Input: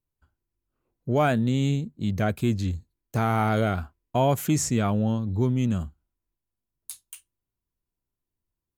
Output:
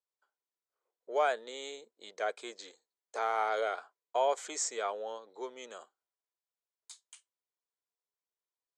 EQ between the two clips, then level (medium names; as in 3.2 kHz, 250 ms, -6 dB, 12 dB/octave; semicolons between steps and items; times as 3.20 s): Chebyshev band-pass 440–8100 Hz, order 4; band-stop 2.7 kHz, Q 7.2; -4.5 dB